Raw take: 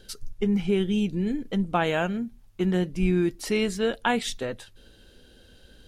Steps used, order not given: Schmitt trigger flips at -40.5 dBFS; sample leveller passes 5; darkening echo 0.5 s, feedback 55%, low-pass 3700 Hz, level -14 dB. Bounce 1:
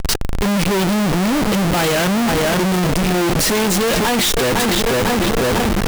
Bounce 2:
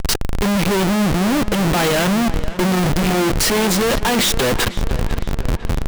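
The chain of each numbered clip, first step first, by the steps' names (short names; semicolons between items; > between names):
sample leveller > darkening echo > Schmitt trigger; sample leveller > Schmitt trigger > darkening echo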